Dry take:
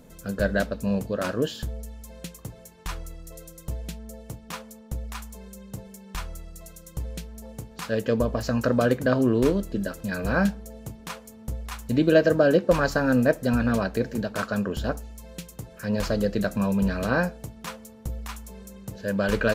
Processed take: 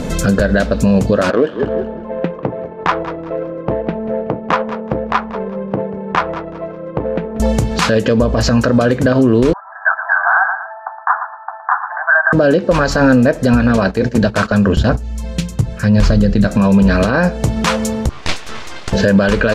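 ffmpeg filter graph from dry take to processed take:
ffmpeg -i in.wav -filter_complex "[0:a]asettb=1/sr,asplit=3[link_01][link_02][link_03];[link_01]atrim=end=1.304[link_04];[link_02]atrim=start=1.3:end=7.4,asetpts=PTS-STARTPTS,afade=type=in:duration=0.004:curve=qsin,afade=type=out:start_time=6.096:duration=0.004:curve=qsin,highpass=330,lowpass=2100,adynamicsmooth=sensitivity=4:basefreq=850,asplit=4[link_05][link_06][link_07][link_08];[link_06]adelay=187,afreqshift=-37,volume=-16dB[link_09];[link_07]adelay=374,afreqshift=-74,volume=-26.2dB[link_10];[link_08]adelay=561,afreqshift=-111,volume=-36.3dB[link_11];[link_05][link_09][link_10][link_11]amix=inputs=4:normalize=0,atrim=end_sample=269010[link_12];[link_03]atrim=start=7.396[link_13];[link_04][link_12]acrossfade=duration=0.004:curve1=hsin:curve2=qsin[link_14];[link_14][link_13]acrossfade=duration=0.004:curve1=qsin:curve2=hsin,asettb=1/sr,asplit=3[link_15][link_16][link_17];[link_15]atrim=end=9.534[link_18];[link_16]atrim=start=9.53:end=12.33,asetpts=PTS-STARTPTS,afade=type=in:duration=0.004:curve=qsin,afade=type=out:start_time=2.796:duration=0.004:curve=qsin,asuperpass=centerf=1100:order=20:qfactor=1.1,aecho=1:1:115|230:0.224|0.0448,atrim=end_sample=123480[link_19];[link_17]atrim=start=12.326[link_20];[link_18][link_19]acrossfade=duration=0.004:curve1=hsin:curve2=qsin[link_21];[link_21][link_20]acrossfade=duration=0.004:curve1=qsin:curve2=hsin,asettb=1/sr,asplit=3[link_22][link_23][link_24];[link_22]atrim=end=13.774[link_25];[link_23]atrim=start=13.77:end=16.47,asetpts=PTS-STARTPTS,afade=type=in:duration=0.004:curve=qsin,afade=type=out:start_time=2.696:duration=0.004:curve=qsin,bandreject=frequency=60:width_type=h:width=6,bandreject=frequency=120:width_type=h:width=6,bandreject=frequency=180:width_type=h:width=6,bandreject=frequency=240:width_type=h:width=6,bandreject=frequency=300:width_type=h:width=6,bandreject=frequency=360:width_type=h:width=6,bandreject=frequency=420:width_type=h:width=6,agate=range=-13dB:threshold=-34dB:ratio=16:release=100:detection=peak,asubboost=boost=5:cutoff=220[link_26];[link_24]atrim=start=16.466[link_27];[link_25][link_26]acrossfade=duration=0.004:curve1=hsin:curve2=qsin[link_28];[link_28][link_27]acrossfade=duration=0.004:curve1=qsin:curve2=hsin,asettb=1/sr,asplit=3[link_29][link_30][link_31];[link_29]atrim=end=18.094[link_32];[link_30]atrim=start=18.09:end=18.93,asetpts=PTS-STARTPTS,afade=type=in:duration=0.004:curve=qsin,afade=type=out:start_time=0.836:duration=0.004:curve=qsin,highpass=700,lowpass=4700,aeval=exprs='abs(val(0))':channel_layout=same,asplit=2[link_33][link_34];[link_34]adelay=12,volume=-14dB[link_35];[link_33][link_35]amix=inputs=2:normalize=0,atrim=end_sample=37044[link_36];[link_31]atrim=start=18.926[link_37];[link_32][link_36]acrossfade=duration=0.004:curve1=hsin:curve2=qsin[link_38];[link_38][link_37]acrossfade=duration=0.004:curve1=qsin:curve2=hsin,lowpass=6800,acompressor=threshold=-37dB:ratio=4,alimiter=level_in=31dB:limit=-1dB:release=50:level=0:latency=1,volume=-2dB" out.wav

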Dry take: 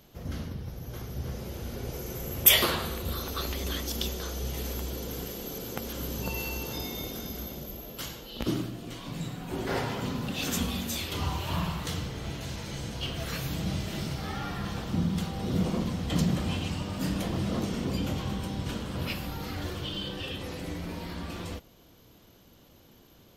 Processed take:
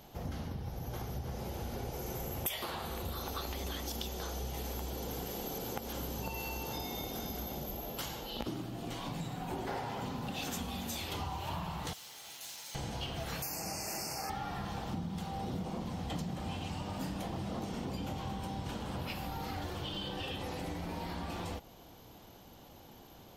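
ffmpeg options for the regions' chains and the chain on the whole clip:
ffmpeg -i in.wav -filter_complex "[0:a]asettb=1/sr,asplit=3[link_01][link_02][link_03];[link_01]atrim=end=11.934[link_04];[link_02]atrim=start=11.93:end=12.75,asetpts=PTS-STARTPTS,afade=type=in:duration=0.004:curve=qsin,afade=type=out:start_time=0.816:duration=0.004:curve=qsin,aderivative,acrusher=bits=2:mode=log:mix=0:aa=0.000001[link_05];[link_03]atrim=start=12.746[link_06];[link_04][link_05]acrossfade=duration=0.004:curve1=hsin:curve2=qsin[link_07];[link_07][link_06]acrossfade=duration=0.004:curve1=qsin:curve2=hsin,asettb=1/sr,asplit=3[link_08][link_09][link_10];[link_08]atrim=end=13.424[link_11];[link_09]atrim=start=13.42:end=14.3,asetpts=PTS-STARTPTS,afade=type=in:duration=0.004:curve=qsin,afade=type=out:start_time=0.876:duration=0.004:curve=qsin,asuperstop=centerf=3500:order=12:qfactor=2.1,bass=frequency=250:gain=-13,treble=frequency=4000:gain=13[link_12];[link_10]atrim=start=14.296[link_13];[link_11][link_12]acrossfade=duration=0.004:curve1=hsin:curve2=qsin[link_14];[link_14][link_13]acrossfade=duration=0.004:curve1=qsin:curve2=hsin,equalizer=frequency=810:width=2.7:gain=10,acompressor=threshold=-37dB:ratio=6,volume=1dB" out.wav

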